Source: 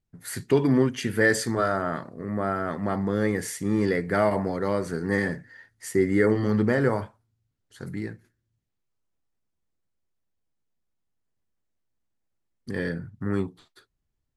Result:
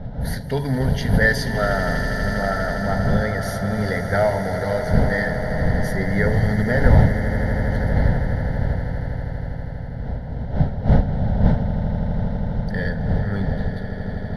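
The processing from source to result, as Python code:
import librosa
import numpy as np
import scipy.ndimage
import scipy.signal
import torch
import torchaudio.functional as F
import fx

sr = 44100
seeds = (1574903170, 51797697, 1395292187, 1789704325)

y = fx.dmg_wind(x, sr, seeds[0], corner_hz=230.0, level_db=-26.0)
y = fx.fixed_phaser(y, sr, hz=1700.0, stages=8)
y = fx.echo_swell(y, sr, ms=81, loudest=8, wet_db=-14)
y = y * librosa.db_to_amplitude(5.0)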